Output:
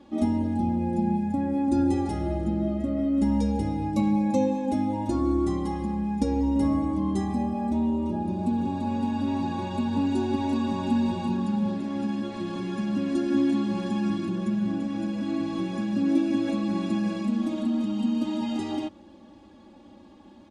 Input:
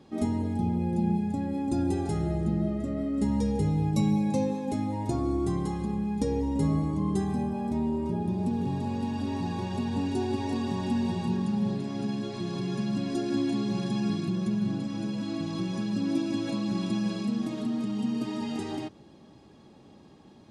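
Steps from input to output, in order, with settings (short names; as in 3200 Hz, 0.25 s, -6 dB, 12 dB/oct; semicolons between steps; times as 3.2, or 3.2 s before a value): high shelf 7700 Hz -9 dB; comb 3.5 ms, depth 95%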